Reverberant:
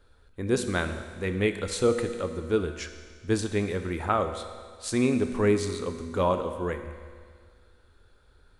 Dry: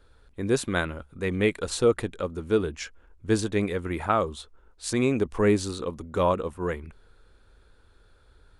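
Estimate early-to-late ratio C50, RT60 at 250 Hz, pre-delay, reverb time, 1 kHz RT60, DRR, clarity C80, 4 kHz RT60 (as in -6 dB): 9.0 dB, 1.9 s, 4 ms, 1.9 s, 1.9 s, 7.0 dB, 10.0 dB, 1.9 s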